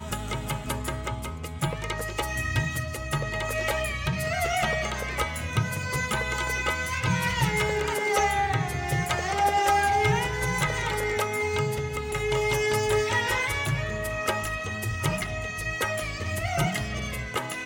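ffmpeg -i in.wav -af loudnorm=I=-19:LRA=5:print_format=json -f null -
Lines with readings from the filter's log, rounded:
"input_i" : "-27.2",
"input_tp" : "-11.4",
"input_lra" : "4.6",
"input_thresh" : "-37.2",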